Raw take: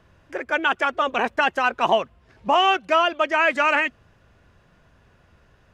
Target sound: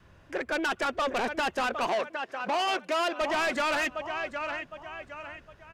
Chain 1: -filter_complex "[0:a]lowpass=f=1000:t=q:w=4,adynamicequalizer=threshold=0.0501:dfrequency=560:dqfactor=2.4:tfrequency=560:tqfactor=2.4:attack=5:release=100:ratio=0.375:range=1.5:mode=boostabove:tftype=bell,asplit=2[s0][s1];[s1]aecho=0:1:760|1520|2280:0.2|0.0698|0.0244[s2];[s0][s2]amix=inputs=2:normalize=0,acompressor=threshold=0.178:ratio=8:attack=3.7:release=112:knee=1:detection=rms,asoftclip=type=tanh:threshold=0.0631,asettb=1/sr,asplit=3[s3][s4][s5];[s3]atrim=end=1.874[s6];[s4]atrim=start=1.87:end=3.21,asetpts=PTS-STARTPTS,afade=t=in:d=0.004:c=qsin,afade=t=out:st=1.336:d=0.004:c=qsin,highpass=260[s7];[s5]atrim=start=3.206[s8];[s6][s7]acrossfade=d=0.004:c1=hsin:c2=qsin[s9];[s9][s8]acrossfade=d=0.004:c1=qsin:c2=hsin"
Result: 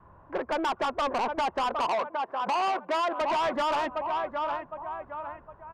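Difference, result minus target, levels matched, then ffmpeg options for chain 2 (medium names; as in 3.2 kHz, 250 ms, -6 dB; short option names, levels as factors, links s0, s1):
1 kHz band +3.5 dB
-filter_complex "[0:a]adynamicequalizer=threshold=0.0501:dfrequency=560:dqfactor=2.4:tfrequency=560:tqfactor=2.4:attack=5:release=100:ratio=0.375:range=1.5:mode=boostabove:tftype=bell,asplit=2[s0][s1];[s1]aecho=0:1:760|1520|2280:0.2|0.0698|0.0244[s2];[s0][s2]amix=inputs=2:normalize=0,acompressor=threshold=0.178:ratio=8:attack=3.7:release=112:knee=1:detection=rms,asoftclip=type=tanh:threshold=0.0631,asettb=1/sr,asplit=3[s3][s4][s5];[s3]atrim=end=1.874[s6];[s4]atrim=start=1.87:end=3.21,asetpts=PTS-STARTPTS,afade=t=in:d=0.004:c=qsin,afade=t=out:st=1.336:d=0.004:c=qsin,highpass=260[s7];[s5]atrim=start=3.206[s8];[s6][s7]acrossfade=d=0.004:c1=hsin:c2=qsin[s9];[s9][s8]acrossfade=d=0.004:c1=qsin:c2=hsin"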